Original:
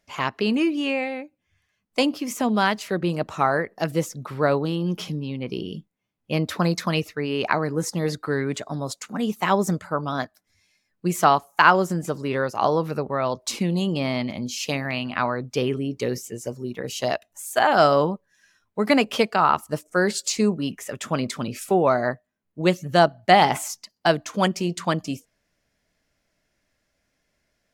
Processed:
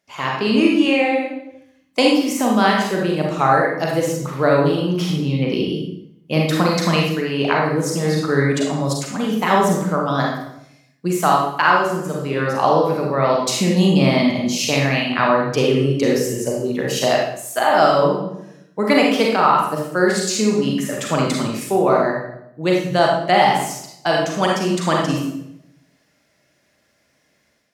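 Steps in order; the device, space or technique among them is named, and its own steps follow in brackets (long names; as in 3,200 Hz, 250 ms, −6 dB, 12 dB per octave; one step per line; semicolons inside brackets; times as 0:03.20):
far laptop microphone (convolution reverb RT60 0.75 s, pre-delay 34 ms, DRR −2 dB; high-pass filter 120 Hz; automatic gain control gain up to 8 dB)
level −1 dB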